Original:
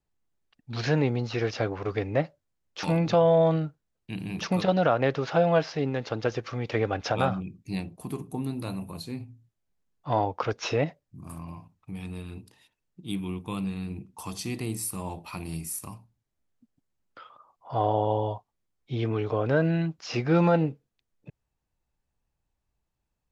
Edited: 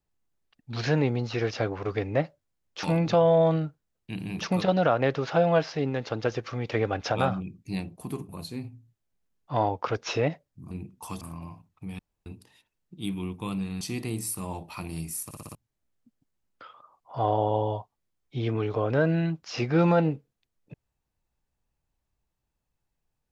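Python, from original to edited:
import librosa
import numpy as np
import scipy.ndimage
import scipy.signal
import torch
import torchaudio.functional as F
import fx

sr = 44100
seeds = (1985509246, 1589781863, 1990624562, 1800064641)

y = fx.edit(x, sr, fx.cut(start_s=8.29, length_s=0.56),
    fx.room_tone_fill(start_s=12.05, length_s=0.27),
    fx.move(start_s=13.87, length_s=0.5, to_s=11.27),
    fx.stutter_over(start_s=15.81, slice_s=0.06, count=5), tone=tone)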